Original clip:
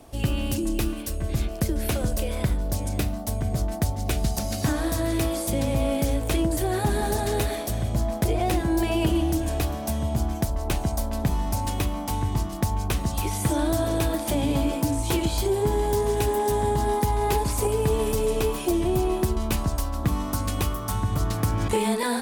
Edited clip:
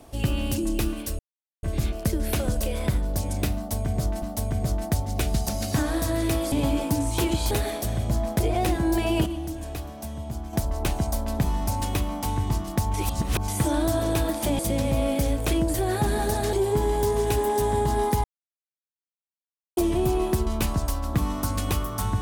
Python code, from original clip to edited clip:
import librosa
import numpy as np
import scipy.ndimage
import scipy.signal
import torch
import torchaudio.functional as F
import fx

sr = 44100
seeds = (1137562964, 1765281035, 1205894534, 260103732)

y = fx.edit(x, sr, fx.insert_silence(at_s=1.19, length_s=0.44),
    fx.repeat(start_s=3.12, length_s=0.66, count=2),
    fx.swap(start_s=5.42, length_s=1.94, other_s=14.44, other_length_s=0.99),
    fx.clip_gain(start_s=9.11, length_s=1.27, db=-8.0),
    fx.reverse_span(start_s=12.79, length_s=0.54),
    fx.silence(start_s=17.14, length_s=1.53), tone=tone)